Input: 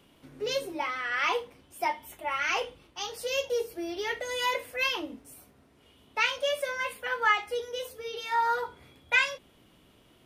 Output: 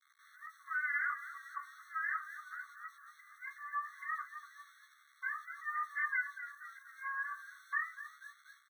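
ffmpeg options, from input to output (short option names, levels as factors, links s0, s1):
-filter_complex "[0:a]afftfilt=real='re*between(b*sr/4096,200,1800)':imag='im*between(b*sr/4096,200,1800)':win_size=4096:overlap=0.75,acompressor=threshold=0.0178:ratio=6,asetrate=52038,aresample=44100,asplit=7[s0][s1][s2][s3][s4][s5][s6];[s1]adelay=241,afreqshift=-56,volume=0.251[s7];[s2]adelay=482,afreqshift=-112,volume=0.135[s8];[s3]adelay=723,afreqshift=-168,volume=0.0733[s9];[s4]adelay=964,afreqshift=-224,volume=0.0394[s10];[s5]adelay=1205,afreqshift=-280,volume=0.0214[s11];[s6]adelay=1446,afreqshift=-336,volume=0.0115[s12];[s0][s7][s8][s9][s10][s11][s12]amix=inputs=7:normalize=0,aeval=exprs='val(0)*gte(abs(val(0)),0.0015)':c=same,asplit=2[s13][s14];[s14]adelay=14,volume=0.794[s15];[s13][s15]amix=inputs=2:normalize=0,afftfilt=real='re*eq(mod(floor(b*sr/1024/1100),2),1)':imag='im*eq(mod(floor(b*sr/1024/1100),2),1)':win_size=1024:overlap=0.75,volume=1.12"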